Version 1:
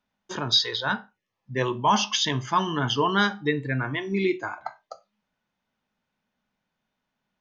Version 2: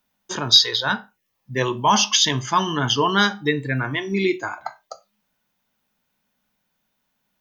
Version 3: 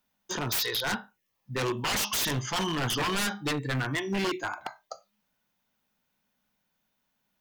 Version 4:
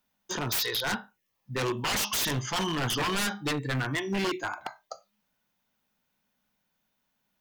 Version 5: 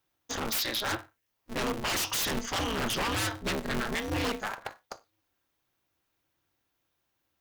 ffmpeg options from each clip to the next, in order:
-af "aemphasis=mode=production:type=50fm,volume=1.5"
-af "aeval=exprs='0.112*(abs(mod(val(0)/0.112+3,4)-2)-1)':c=same,volume=0.631"
-af anull
-af "aeval=exprs='val(0)*sgn(sin(2*PI*110*n/s))':c=same,volume=0.841"

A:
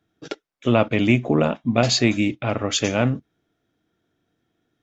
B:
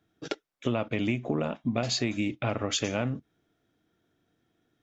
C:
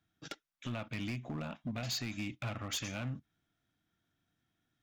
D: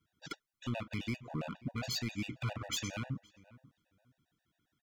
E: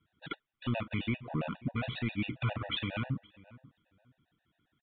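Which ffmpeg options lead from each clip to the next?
-af "acompressor=threshold=0.0631:ratio=6,volume=0.891"
-af "equalizer=f=430:t=o:w=1.2:g=-13.5,asoftclip=type=hard:threshold=0.0398,volume=0.596"
-filter_complex "[0:a]asplit=2[s0][s1];[s1]adelay=517,lowpass=f=1700:p=1,volume=0.1,asplit=2[s2][s3];[s3]adelay=517,lowpass=f=1700:p=1,volume=0.21[s4];[s0][s2][s4]amix=inputs=3:normalize=0,afftfilt=real='re*gt(sin(2*PI*7.4*pts/sr)*(1-2*mod(floor(b*sr/1024/490),2)),0)':imag='im*gt(sin(2*PI*7.4*pts/sr)*(1-2*mod(floor(b*sr/1024/490),2)),0)':win_size=1024:overlap=0.75,volume=1.5"
-af "aresample=8000,aresample=44100,volume=1.68"

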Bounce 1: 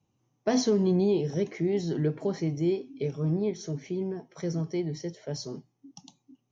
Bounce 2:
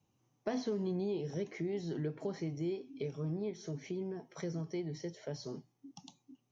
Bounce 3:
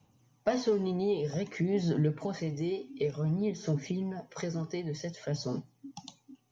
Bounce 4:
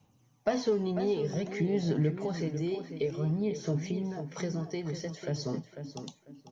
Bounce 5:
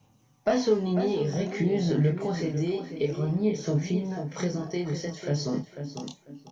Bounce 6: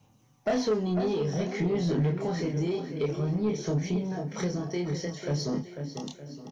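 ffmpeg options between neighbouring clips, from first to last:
-filter_complex "[0:a]acrossover=split=3900[s0][s1];[s1]acompressor=threshold=0.00316:ratio=4:attack=1:release=60[s2];[s0][s2]amix=inputs=2:normalize=0,lowshelf=f=470:g=-3,acompressor=threshold=0.01:ratio=2"
-af "equalizer=f=360:w=5.9:g=-9.5,aphaser=in_gain=1:out_gain=1:delay=2.7:decay=0.4:speed=0.54:type=sinusoidal,volume=2.24"
-filter_complex "[0:a]asplit=2[s0][s1];[s1]adelay=496,lowpass=f=3500:p=1,volume=0.355,asplit=2[s2][s3];[s3]adelay=496,lowpass=f=3500:p=1,volume=0.21,asplit=2[s4][s5];[s5]adelay=496,lowpass=f=3500:p=1,volume=0.21[s6];[s0][s2][s4][s6]amix=inputs=4:normalize=0"
-filter_complex "[0:a]asplit=2[s0][s1];[s1]adelay=28,volume=0.708[s2];[s0][s2]amix=inputs=2:normalize=0,volume=1.41"
-af "aecho=1:1:916:0.133,asoftclip=type=tanh:threshold=0.1"

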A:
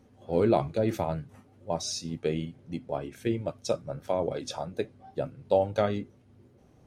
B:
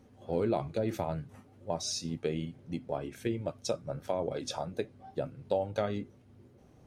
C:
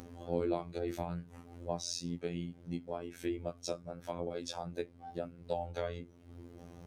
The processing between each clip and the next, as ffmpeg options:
-af "acompressor=threshold=0.0282:ratio=2"
-af "acompressor=mode=upward:threshold=0.0178:ratio=2.5,afftfilt=real='hypot(re,im)*cos(PI*b)':imag='0':win_size=2048:overlap=0.75,volume=0.891"

